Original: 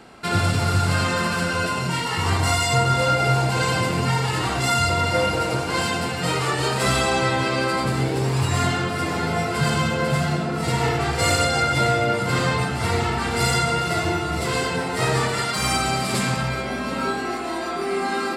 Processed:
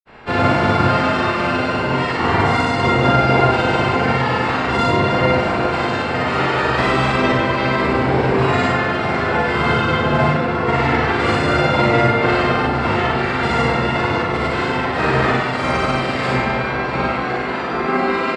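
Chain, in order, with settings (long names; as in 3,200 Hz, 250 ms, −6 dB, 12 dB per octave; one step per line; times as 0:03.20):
ceiling on every frequency bin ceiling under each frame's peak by 15 dB
low-pass filter 2,000 Hz 12 dB per octave
in parallel at −8 dB: soft clipping −24.5 dBFS, distortion −9 dB
on the sum: granular cloud, pitch spread up and down by 0 semitones
double-tracking delay 39 ms −4 dB
on a send: multi-tap delay 59/67 ms −3.5/−5 dB
on the sum: level +2.5 dB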